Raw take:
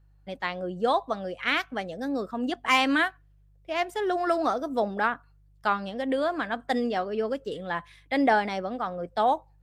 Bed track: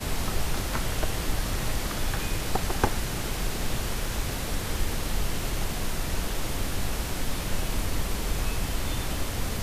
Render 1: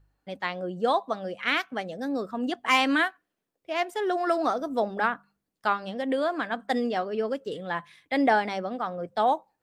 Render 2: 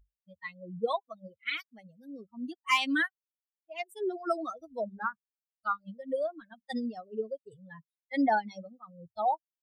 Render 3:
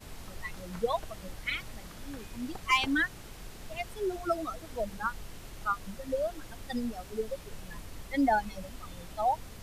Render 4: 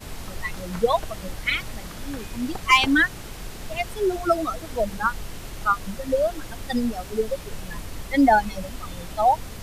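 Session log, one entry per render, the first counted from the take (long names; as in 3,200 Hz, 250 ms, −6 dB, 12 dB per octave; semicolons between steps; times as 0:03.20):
hum removal 50 Hz, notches 4
spectral dynamics exaggerated over time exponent 3
mix in bed track −16.5 dB
level +9.5 dB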